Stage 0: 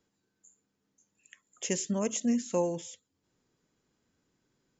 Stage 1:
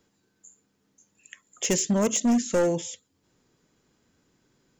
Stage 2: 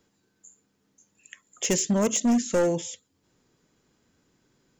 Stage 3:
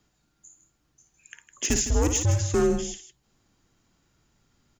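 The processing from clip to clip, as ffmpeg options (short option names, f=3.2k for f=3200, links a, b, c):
-af "asoftclip=type=hard:threshold=-26.5dB,volume=8.5dB"
-af anull
-filter_complex "[0:a]afreqshift=-140,asplit=2[a][b];[b]aecho=0:1:55.39|157.4:0.398|0.251[c];[a][c]amix=inputs=2:normalize=0"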